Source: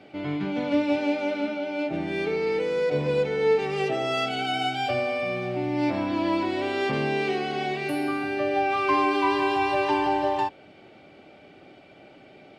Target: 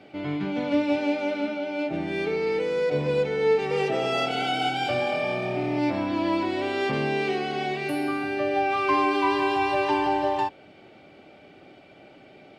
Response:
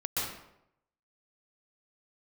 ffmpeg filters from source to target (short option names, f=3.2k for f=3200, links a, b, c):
-filter_complex "[0:a]asettb=1/sr,asplit=3[a][b][c];[a]atrim=end=3.484[d];[b]atrim=start=3.48:end=5.79,asetpts=PTS-STARTPTS,afade=t=in:d=0.004:c=qsin,afade=t=out:st=2.306:d=0.004:c=qsin,asplit=6[e][f][g][h][i][j];[f]adelay=227,afreqshift=40,volume=-8dB[k];[g]adelay=454,afreqshift=80,volume=-14.6dB[l];[h]adelay=681,afreqshift=120,volume=-21.1dB[m];[i]adelay=908,afreqshift=160,volume=-27.7dB[n];[j]adelay=1135,afreqshift=200,volume=-34.2dB[o];[e][k][l][m][n][o]amix=inputs=6:normalize=0,atrim=end_sample=101871[p];[c]atrim=start=5.786[q];[d][p]acrossfade=d=0.004:c1=hsin:c2=qsin[r];[r][q]acrossfade=d=0.004:c1=qsin:c2=hsin"